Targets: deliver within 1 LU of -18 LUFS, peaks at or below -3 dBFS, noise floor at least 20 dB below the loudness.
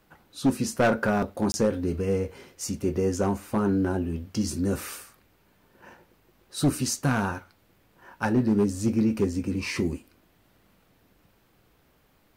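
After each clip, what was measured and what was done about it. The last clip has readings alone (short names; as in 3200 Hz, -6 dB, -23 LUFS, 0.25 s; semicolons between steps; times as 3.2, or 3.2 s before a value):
clipped 0.7%; flat tops at -16.0 dBFS; dropouts 1; longest dropout 20 ms; loudness -26.5 LUFS; peak -16.0 dBFS; loudness target -18.0 LUFS
-> clip repair -16 dBFS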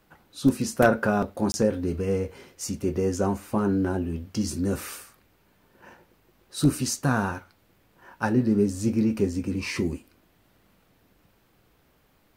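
clipped 0.0%; dropouts 1; longest dropout 20 ms
-> interpolate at 1.52, 20 ms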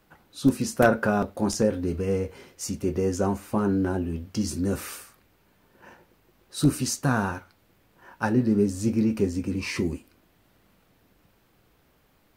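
dropouts 0; loudness -26.0 LUFS; peak -7.0 dBFS; loudness target -18.0 LUFS
-> gain +8 dB; limiter -3 dBFS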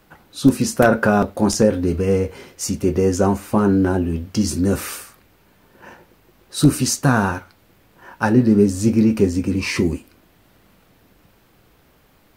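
loudness -18.5 LUFS; peak -3.0 dBFS; noise floor -56 dBFS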